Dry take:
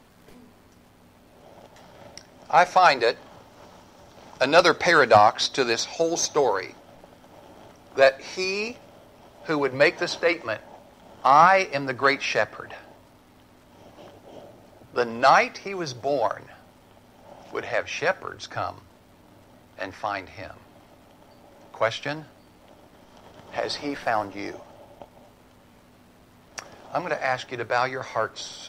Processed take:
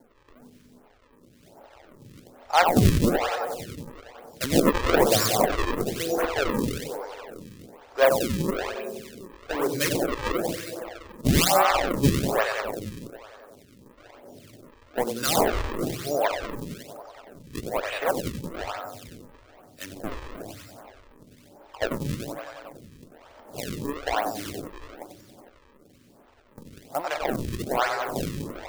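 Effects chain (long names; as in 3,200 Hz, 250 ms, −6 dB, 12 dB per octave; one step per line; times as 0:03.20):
feedback echo with a low-pass in the loop 93 ms, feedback 79%, low-pass 4,800 Hz, level −5 dB
sample-and-hold swept by an LFO 35×, swing 160% 1.1 Hz
phaser with staggered stages 1.3 Hz
level −1 dB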